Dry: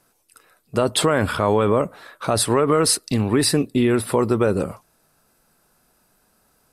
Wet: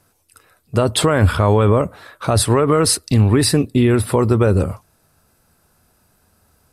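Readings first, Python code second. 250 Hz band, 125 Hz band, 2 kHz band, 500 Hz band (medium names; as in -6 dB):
+3.5 dB, +10.0 dB, +2.0 dB, +2.5 dB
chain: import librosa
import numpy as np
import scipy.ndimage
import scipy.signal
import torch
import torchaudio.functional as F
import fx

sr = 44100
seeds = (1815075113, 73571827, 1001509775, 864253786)

y = fx.peak_eq(x, sr, hz=83.0, db=15.0, octaves=0.98)
y = y * 10.0 ** (2.0 / 20.0)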